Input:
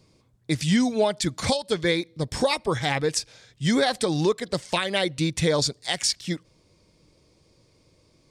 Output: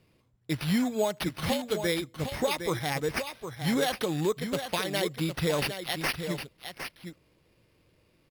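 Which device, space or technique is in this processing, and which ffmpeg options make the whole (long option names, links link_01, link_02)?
crushed at another speed: -af "asetrate=22050,aresample=44100,acrusher=samples=12:mix=1:aa=0.000001,asetrate=88200,aresample=44100,aecho=1:1:760:0.376,volume=-5.5dB"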